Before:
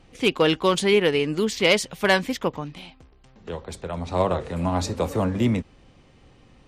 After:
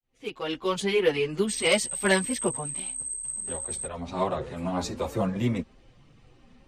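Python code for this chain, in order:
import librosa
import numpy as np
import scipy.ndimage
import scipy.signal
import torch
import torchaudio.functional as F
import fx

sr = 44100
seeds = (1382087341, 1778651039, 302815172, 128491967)

y = fx.fade_in_head(x, sr, length_s=1.06)
y = fx.dmg_tone(y, sr, hz=8300.0, level_db=-27.0, at=(1.47, 3.85), fade=0.02)
y = fx.chorus_voices(y, sr, voices=6, hz=0.3, base_ms=12, depth_ms=4.5, mix_pct=65)
y = y * librosa.db_to_amplitude(-1.5)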